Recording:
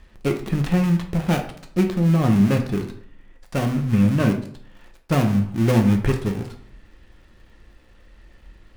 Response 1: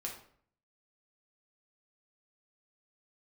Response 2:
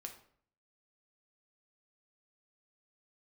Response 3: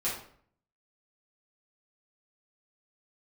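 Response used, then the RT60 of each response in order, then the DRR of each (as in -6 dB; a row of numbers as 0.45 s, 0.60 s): 2; 0.55 s, 0.55 s, 0.55 s; -1.5 dB, 3.0 dB, -9.5 dB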